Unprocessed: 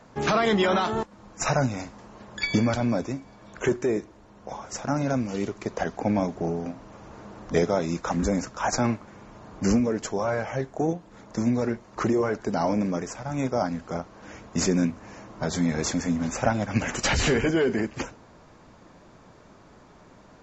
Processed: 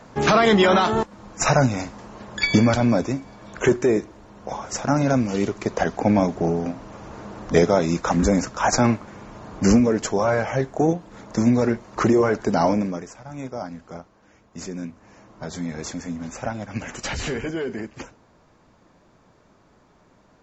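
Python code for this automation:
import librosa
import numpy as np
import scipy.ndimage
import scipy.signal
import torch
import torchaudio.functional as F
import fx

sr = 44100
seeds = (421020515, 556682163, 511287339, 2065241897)

y = fx.gain(x, sr, db=fx.line((12.66, 6.0), (13.12, -6.0), (13.96, -6.0), (14.31, -13.0), (15.29, -5.0)))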